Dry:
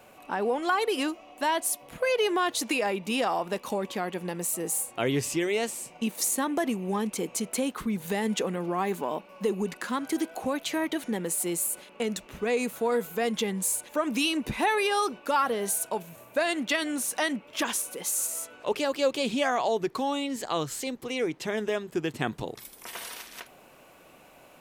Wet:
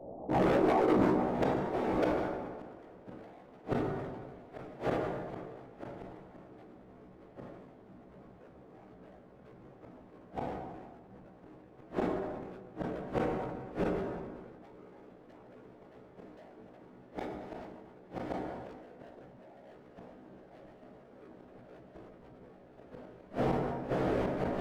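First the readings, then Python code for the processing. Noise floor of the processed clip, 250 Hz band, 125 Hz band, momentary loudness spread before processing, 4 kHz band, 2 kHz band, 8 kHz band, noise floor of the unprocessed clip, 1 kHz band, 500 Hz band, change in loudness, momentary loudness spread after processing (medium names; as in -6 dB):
-56 dBFS, -6.0 dB, -1.5 dB, 7 LU, -21.5 dB, -14.0 dB, under -30 dB, -54 dBFS, -8.0 dB, -6.5 dB, -5.5 dB, 24 LU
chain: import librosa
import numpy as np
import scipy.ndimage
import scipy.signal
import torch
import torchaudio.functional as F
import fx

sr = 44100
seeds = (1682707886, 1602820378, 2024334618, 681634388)

y = fx.wiener(x, sr, points=25)
y = scipy.signal.sosfilt(scipy.signal.cheby1(3, 1.0, [110.0, 680.0], 'bandpass', fs=sr, output='sos'), y)
y = fx.whisperise(y, sr, seeds[0])
y = fx.rider(y, sr, range_db=4, speed_s=0.5)
y = np.clip(10.0 ** (33.5 / 20.0) * y, -1.0, 1.0) / 10.0 ** (33.5 / 20.0)
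y = fx.doubler(y, sr, ms=16.0, db=-2)
y = fx.echo_diffused(y, sr, ms=1157, feedback_pct=78, wet_db=-4.5)
y = fx.gate_flip(y, sr, shuts_db=-27.0, range_db=-30)
y = fx.rev_plate(y, sr, seeds[1], rt60_s=2.7, hf_ratio=0.5, predelay_ms=0, drr_db=7.0)
y = fx.sustainer(y, sr, db_per_s=32.0)
y = y * 10.0 ** (6.5 / 20.0)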